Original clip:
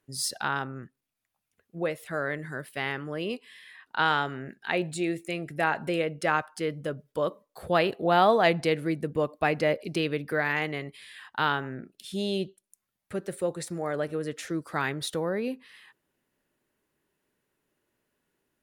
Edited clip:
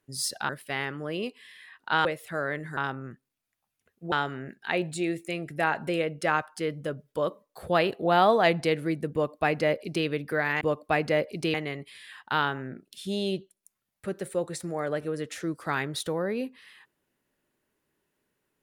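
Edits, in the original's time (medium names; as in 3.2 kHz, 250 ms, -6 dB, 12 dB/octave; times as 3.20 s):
0.49–1.84 s: swap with 2.56–4.12 s
9.13–10.06 s: copy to 10.61 s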